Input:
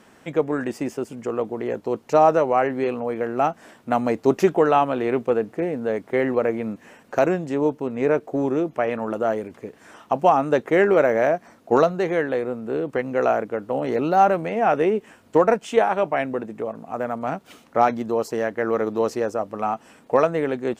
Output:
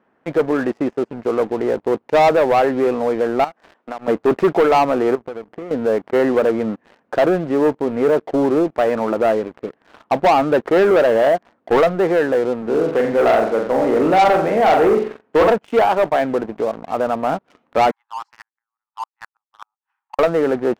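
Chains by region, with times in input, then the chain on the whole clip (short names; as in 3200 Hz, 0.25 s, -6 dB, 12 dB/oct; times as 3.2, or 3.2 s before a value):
3.44–4.08 HPF 310 Hz + high shelf 3400 Hz +6 dB + compressor, threshold -33 dBFS
5.15–5.71 CVSD 64 kbps + compressor 5:1, threshold -34 dBFS + air absorption 360 m
12.62–15.5 HPF 100 Hz + flutter echo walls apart 7.6 m, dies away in 0.5 s
17.91–20.19 Chebyshev high-pass 810 Hz, order 8 + flipped gate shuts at -24 dBFS, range -33 dB + upward expander, over -57 dBFS
whole clip: LPF 1600 Hz 12 dB/oct; low shelf 150 Hz -11 dB; sample leveller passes 3; gain -2 dB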